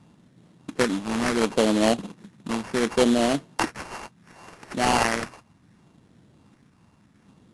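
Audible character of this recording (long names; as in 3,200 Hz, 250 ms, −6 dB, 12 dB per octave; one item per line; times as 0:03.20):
a buzz of ramps at a fixed pitch in blocks of 16 samples
phaser sweep stages 6, 0.69 Hz, lowest notch 520–2,300 Hz
aliases and images of a low sample rate 3,700 Hz, jitter 20%
AAC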